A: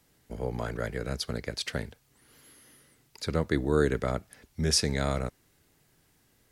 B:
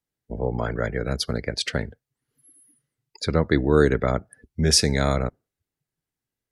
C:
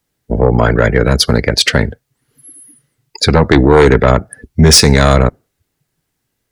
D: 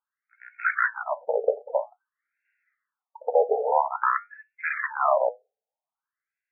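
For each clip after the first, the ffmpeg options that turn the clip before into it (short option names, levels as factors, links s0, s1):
-af "afftdn=nr=29:nf=-47,volume=2.24"
-filter_complex "[0:a]asplit=2[s0][s1];[s1]alimiter=limit=0.188:level=0:latency=1:release=31,volume=1[s2];[s0][s2]amix=inputs=2:normalize=0,aeval=exprs='0.891*sin(PI/2*2.24*val(0)/0.891)':c=same"
-af "agate=range=0.501:threshold=0.00708:ratio=16:detection=peak,flanger=delay=8.7:depth=1.3:regen=-74:speed=1.1:shape=triangular,afftfilt=real='re*between(b*sr/1024,580*pow(2000/580,0.5+0.5*sin(2*PI*0.5*pts/sr))/1.41,580*pow(2000/580,0.5+0.5*sin(2*PI*0.5*pts/sr))*1.41)':imag='im*between(b*sr/1024,580*pow(2000/580,0.5+0.5*sin(2*PI*0.5*pts/sr))/1.41,580*pow(2000/580,0.5+0.5*sin(2*PI*0.5*pts/sr))*1.41)':win_size=1024:overlap=0.75"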